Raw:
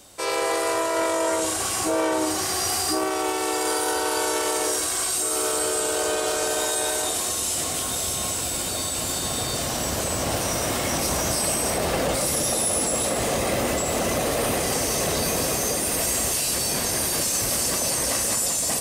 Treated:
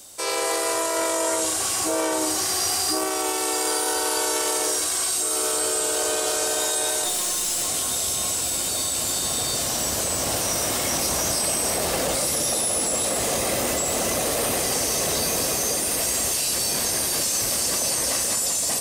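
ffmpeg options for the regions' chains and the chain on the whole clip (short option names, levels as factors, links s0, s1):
-filter_complex "[0:a]asettb=1/sr,asplit=3[s0][s1][s2];[s0]atrim=end=7.044[s3];[s1]atrim=start=7.04:end=7.68,asetpts=PTS-STARTPTS,afade=t=in:d=0.004:c=qsin,afade=t=out:st=0.636:d=0.004:c=qsin,afreqshift=-18,aecho=1:1:5.5:0.52,atrim=end_sample=28224,aeval=exprs='clip(val(0),-1,0.0447)':c=same[s4];[s2]atrim=start=7.676[s5];[s3][s4]acrossfade=d=0.004:c1=hsin:c2=qsin[s6];[s6][s5]acrossfade=d=0.004:c1=qsin:c2=hsin,acrossover=split=4900[s7][s8];[s8]acompressor=threshold=0.0316:ratio=4:attack=1:release=60[s9];[s7][s9]amix=inputs=2:normalize=0,bass=f=250:g=-3,treble=f=4000:g=9,volume=0.841"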